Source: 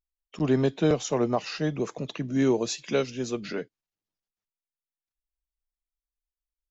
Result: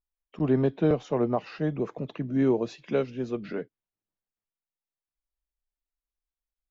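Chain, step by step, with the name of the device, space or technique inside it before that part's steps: phone in a pocket (low-pass 3.6 kHz 12 dB/octave; treble shelf 2.1 kHz -10.5 dB)

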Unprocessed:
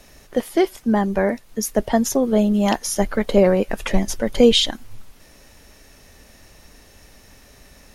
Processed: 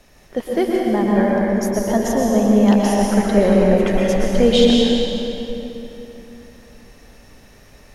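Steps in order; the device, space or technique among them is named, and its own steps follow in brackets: swimming-pool hall (reverberation RT60 3.2 s, pre-delay 108 ms, DRR -3.5 dB; treble shelf 4.9 kHz -6 dB); trim -2.5 dB

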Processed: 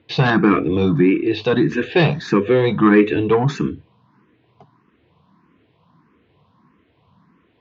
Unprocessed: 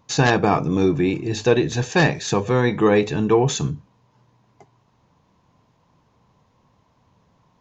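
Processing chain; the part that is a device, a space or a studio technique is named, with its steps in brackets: 1.03–1.53 s: bass shelf 190 Hz -7 dB; barber-pole phaser into a guitar amplifier (barber-pole phaser +1.6 Hz; saturation -12.5 dBFS, distortion -19 dB; cabinet simulation 97–3500 Hz, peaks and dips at 120 Hz -6 dB, 320 Hz +4 dB, 580 Hz -8 dB, 840 Hz -9 dB); trim +9 dB

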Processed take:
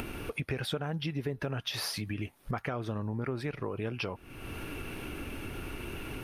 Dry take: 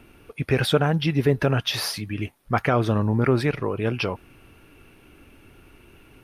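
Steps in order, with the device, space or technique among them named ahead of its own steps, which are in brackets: upward and downward compression (upward compressor, threshold -25 dBFS; compression 6:1, threshold -30 dBFS, peak gain reduction 15.5 dB); trim -1.5 dB

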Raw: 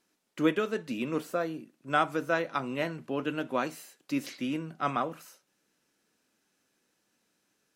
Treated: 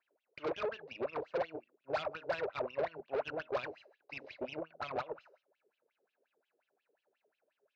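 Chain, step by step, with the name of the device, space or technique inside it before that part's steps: tilt shelf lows +3.5 dB, about 630 Hz; wah-wah guitar rig (wah-wah 5.6 Hz 390–3300 Hz, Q 10; valve stage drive 47 dB, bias 0.65; cabinet simulation 100–4500 Hz, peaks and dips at 200 Hz -8 dB, 290 Hz -6 dB, 610 Hz +7 dB, 1.2 kHz -3 dB, 1.9 kHz -4 dB, 3.2 kHz -8 dB); trim +15 dB

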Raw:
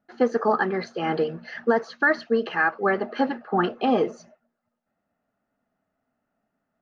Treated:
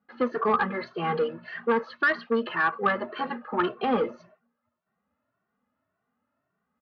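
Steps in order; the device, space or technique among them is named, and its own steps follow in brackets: barber-pole flanger into a guitar amplifier (endless flanger 2.1 ms +1.8 Hz; saturation -19.5 dBFS, distortion -13 dB; cabinet simulation 76–3900 Hz, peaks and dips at 77 Hz +7 dB, 300 Hz -4 dB, 710 Hz -7 dB, 1.1 kHz +8 dB); trim +2.5 dB

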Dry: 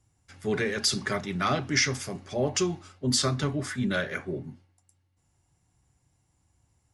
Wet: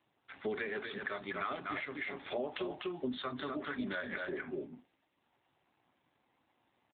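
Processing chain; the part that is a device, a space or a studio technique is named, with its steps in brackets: graphic EQ with 31 bands 250 Hz +4 dB, 500 Hz -4 dB, 4 kHz +11 dB; delay 246 ms -6 dB; dynamic bell 4.8 kHz, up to -4 dB, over -38 dBFS, Q 2.4; voicemail (band-pass 390–3000 Hz; compression 10:1, threshold -40 dBFS, peak gain reduction 17.5 dB; trim +6.5 dB; AMR-NB 7.4 kbps 8 kHz)

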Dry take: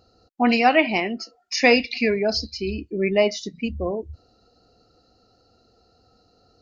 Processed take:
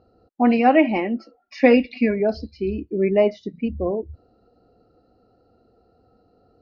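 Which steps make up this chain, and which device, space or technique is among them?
0.58–2.20 s: comb 3.6 ms, depth 53%; phone in a pocket (low-pass 3.2 kHz 12 dB/octave; peaking EQ 350 Hz +4.5 dB 2.4 oct; treble shelf 2.4 kHz -11 dB); trim -1 dB

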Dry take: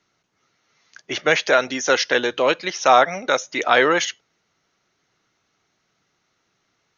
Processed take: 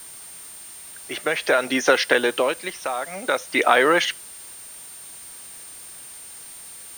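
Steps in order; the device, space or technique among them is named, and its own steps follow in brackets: medium wave at night (band-pass 160–3800 Hz; compression, threshold -19 dBFS, peak gain reduction 10 dB; tremolo 0.52 Hz, depth 74%; whistle 9 kHz -46 dBFS; white noise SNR 20 dB); trim +6.5 dB

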